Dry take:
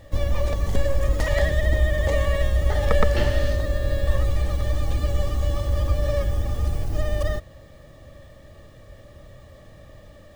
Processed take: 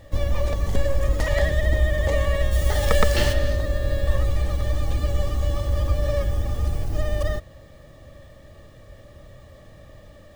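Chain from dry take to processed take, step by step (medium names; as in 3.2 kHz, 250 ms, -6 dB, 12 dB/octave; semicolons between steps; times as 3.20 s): 2.51–3.32 s: treble shelf 4.4 kHz -> 2.8 kHz +12 dB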